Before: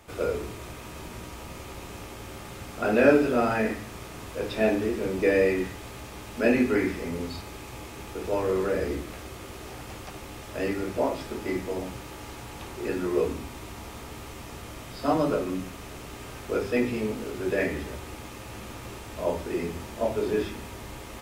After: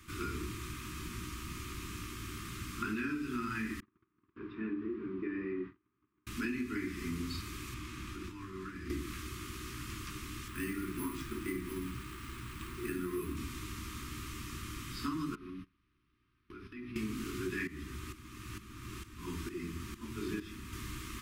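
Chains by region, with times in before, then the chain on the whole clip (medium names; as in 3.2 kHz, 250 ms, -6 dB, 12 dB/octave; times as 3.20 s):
3.80–6.27 s: gate -37 dBFS, range -28 dB + band-pass filter 530 Hz, Q 0.98 + distance through air 300 m
7.74–8.90 s: treble shelf 7 kHz -9 dB + band-stop 410 Hz, Q 6.2 + compression 5:1, threshold -35 dBFS
10.48–13.37 s: distance through air 120 m + hum notches 50/100/150/200/250/300/350/400/450/500 Hz + careless resampling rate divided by 4×, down none, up hold
15.35–16.96 s: gate -34 dBFS, range -32 dB + boxcar filter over 6 samples + compression 5:1, threshold -40 dBFS
17.67–20.73 s: tremolo saw up 2.2 Hz, depth 75% + tape noise reduction on one side only decoder only
whole clip: elliptic band-stop 350–1100 Hz, stop band 40 dB; compression 12:1, threshold -32 dBFS; trim -1 dB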